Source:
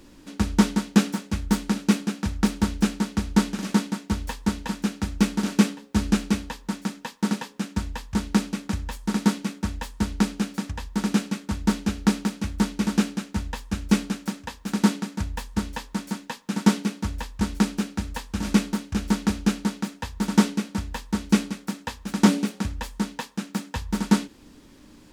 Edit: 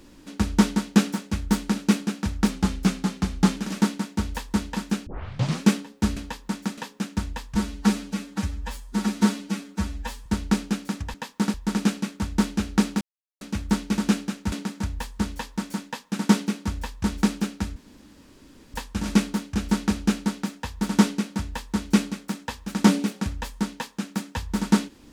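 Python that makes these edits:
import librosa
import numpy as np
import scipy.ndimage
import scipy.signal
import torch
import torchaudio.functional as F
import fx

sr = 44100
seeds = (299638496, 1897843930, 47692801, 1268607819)

y = fx.edit(x, sr, fx.speed_span(start_s=2.49, length_s=1.0, speed=0.93),
    fx.tape_start(start_s=4.99, length_s=0.58),
    fx.cut(start_s=6.09, length_s=0.27),
    fx.move(start_s=6.97, length_s=0.4, to_s=10.83),
    fx.stretch_span(start_s=8.14, length_s=1.81, factor=1.5),
    fx.insert_silence(at_s=12.3, length_s=0.4),
    fx.cut(start_s=13.41, length_s=1.48),
    fx.insert_room_tone(at_s=18.13, length_s=0.98), tone=tone)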